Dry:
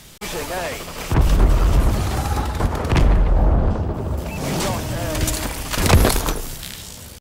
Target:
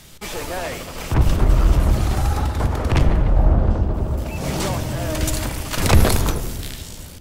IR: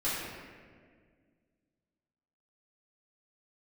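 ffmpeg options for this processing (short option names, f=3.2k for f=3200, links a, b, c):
-filter_complex "[0:a]asplit=2[a][b];[1:a]atrim=start_sample=2205,asetrate=48510,aresample=44100,lowshelf=f=280:g=11.5[c];[b][c]afir=irnorm=-1:irlink=0,volume=-19dB[d];[a][d]amix=inputs=2:normalize=0,volume=-2.5dB"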